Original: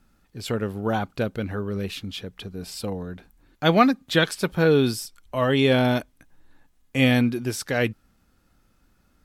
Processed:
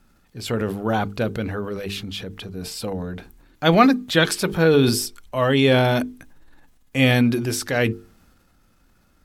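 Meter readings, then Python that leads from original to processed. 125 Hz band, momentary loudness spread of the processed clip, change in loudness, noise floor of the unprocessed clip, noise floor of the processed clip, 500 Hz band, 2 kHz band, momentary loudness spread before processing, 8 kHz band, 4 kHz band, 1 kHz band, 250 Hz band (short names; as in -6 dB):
+3.0 dB, 16 LU, +3.0 dB, -64 dBFS, -60 dBFS, +2.5 dB, +3.0 dB, 15 LU, +6.5 dB, +3.5 dB, +3.0 dB, +2.5 dB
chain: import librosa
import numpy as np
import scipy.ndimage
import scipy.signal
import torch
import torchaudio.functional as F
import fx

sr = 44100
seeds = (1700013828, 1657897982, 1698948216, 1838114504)

y = fx.hum_notches(x, sr, base_hz=50, count=9)
y = fx.transient(y, sr, attack_db=-1, sustain_db=6)
y = y * librosa.db_to_amplitude(3.0)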